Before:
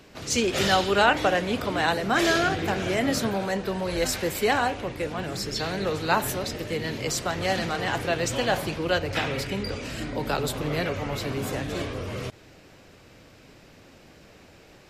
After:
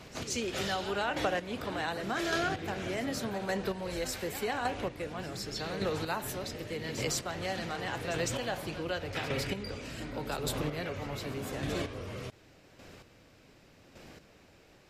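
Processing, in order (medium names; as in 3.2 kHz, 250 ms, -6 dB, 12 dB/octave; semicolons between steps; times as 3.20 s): square tremolo 0.86 Hz, depth 60%, duty 20%; reverse echo 156 ms -15 dB; compression 2.5:1, threshold -31 dBFS, peak gain reduction 9.5 dB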